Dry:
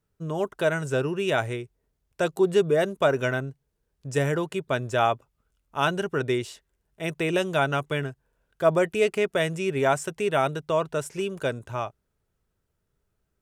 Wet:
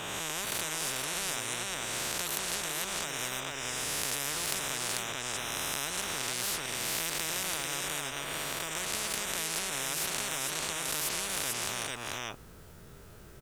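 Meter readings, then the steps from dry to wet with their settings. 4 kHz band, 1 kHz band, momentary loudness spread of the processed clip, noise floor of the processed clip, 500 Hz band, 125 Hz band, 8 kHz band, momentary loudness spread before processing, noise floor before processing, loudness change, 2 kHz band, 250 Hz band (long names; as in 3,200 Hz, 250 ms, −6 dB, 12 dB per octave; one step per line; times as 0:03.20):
+4.0 dB, −9.0 dB, 4 LU, −51 dBFS, −18.0 dB, −15.0 dB, +12.5 dB, 11 LU, −77 dBFS, −6.0 dB, −4.5 dB, −14.5 dB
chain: peak hold with a rise ahead of every peak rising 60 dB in 0.98 s
downward compressor 10 to 1, threshold −30 dBFS, peak gain reduction 17 dB
single-tap delay 443 ms −7 dB
every bin compressed towards the loudest bin 10 to 1
level +8.5 dB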